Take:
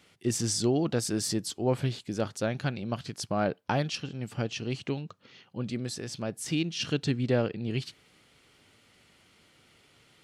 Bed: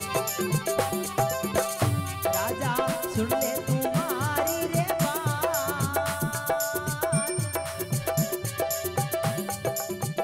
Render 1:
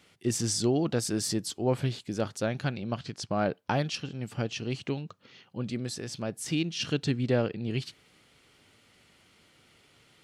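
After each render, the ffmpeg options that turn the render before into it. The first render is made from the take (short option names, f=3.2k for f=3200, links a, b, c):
-filter_complex "[0:a]asettb=1/sr,asplit=3[a][b][c];[a]atrim=end=2.784[d];[b]atrim=start=2.78:end=3.31,asetpts=PTS-STARTPTS,afade=t=in:d=0.004:c=qsin,afade=t=out:st=0.526:d=0.004:c=qsin,lowpass=6.8k[e];[c]atrim=start=3.306[f];[d][e]acrossfade=d=0.004:c1=hsin:c2=qsin[g];[g][f]acrossfade=d=0.004:c1=qsin:c2=hsin"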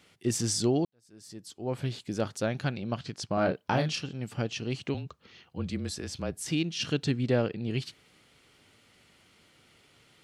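-filter_complex "[0:a]asettb=1/sr,asplit=3[a][b][c];[a]atrim=end=3.344[d];[b]atrim=start=3.34:end=4.06,asetpts=PTS-STARTPTS,afade=t=in:d=0.004:c=qsin,afade=t=out:st=0.716:d=0.004:c=qsin,asplit=2[e][f];[f]adelay=32,volume=-4.5dB[g];[e][g]amix=inputs=2:normalize=0,atrim=end_sample=31752[h];[c]atrim=start=4.056[i];[d][h]acrossfade=d=0.004:c1=hsin:c2=qsin[j];[j][i]acrossfade=d=0.004:c1=qsin:c2=hsin,asettb=1/sr,asplit=3[k][l][m];[k]atrim=end=4.944[n];[l]atrim=start=4.94:end=6.47,asetpts=PTS-STARTPTS,afade=t=in:d=0.004:c=qsin,afade=t=out:st=1.526:d=0.004:c=qsin,afreqshift=-30[o];[m]atrim=start=6.466[p];[n][o]acrossfade=d=0.004:c1=hsin:c2=qsin[q];[q][p]acrossfade=d=0.004:c1=qsin:c2=hsin,asplit=2[r][s];[r]atrim=end=0.85,asetpts=PTS-STARTPTS,afade=t=out:st=0.846:d=0.004:c=hsin[t];[s]atrim=start=0.85,asetpts=PTS-STARTPTS,afade=t=in:d=1.19:c=qua[u];[t][u]concat=n=2:v=0:a=1"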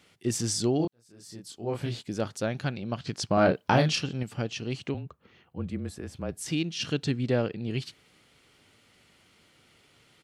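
-filter_complex "[0:a]asplit=3[a][b][c];[a]afade=t=out:st=0.79:d=0.02[d];[b]asplit=2[e][f];[f]adelay=26,volume=-2.5dB[g];[e][g]amix=inputs=2:normalize=0,afade=t=in:st=0.79:d=0.02,afade=t=out:st=2.01:d=0.02[h];[c]afade=t=in:st=2.01:d=0.02[i];[d][h][i]amix=inputs=3:normalize=0,asettb=1/sr,asplit=3[j][k][l];[j]atrim=end=4.914[m];[k]atrim=start=4.91:end=6.29,asetpts=PTS-STARTPTS,afade=t=in:d=0.004:c=qsin,afade=t=out:st=1.376:d=0.004:c=qsin,equalizer=f=5k:t=o:w=1.7:g=-13.5[n];[l]atrim=start=6.286[o];[m][n]acrossfade=d=0.004:c1=hsin:c2=qsin[p];[p][o]acrossfade=d=0.004:c1=qsin:c2=hsin,asplit=3[q][r][s];[q]atrim=end=3.072[t];[r]atrim=start=3.068:end=4.232,asetpts=PTS-STARTPTS,volume=5dB[u];[s]atrim=start=4.228[v];[t][u]acrossfade=d=0.004:c1=hsin:c2=hsin[w];[w][v]acrossfade=d=0.004:c1=hsin:c2=hsin"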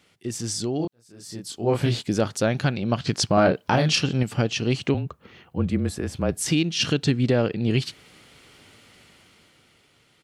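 -af "alimiter=limit=-19dB:level=0:latency=1:release=259,dynaudnorm=f=180:g=13:m=10dB"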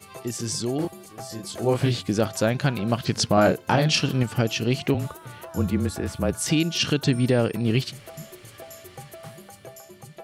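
-filter_complex "[1:a]volume=-14.5dB[a];[0:a][a]amix=inputs=2:normalize=0"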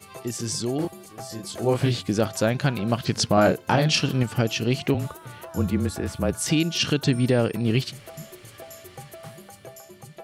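-af anull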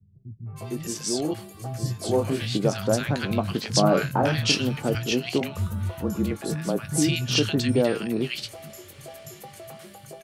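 -filter_complex "[0:a]asplit=2[a][b];[b]adelay=20,volume=-12dB[c];[a][c]amix=inputs=2:normalize=0,acrossover=split=160|1300[d][e][f];[e]adelay=460[g];[f]adelay=560[h];[d][g][h]amix=inputs=3:normalize=0"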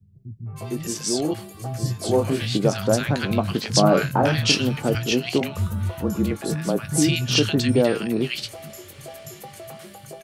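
-af "volume=3dB"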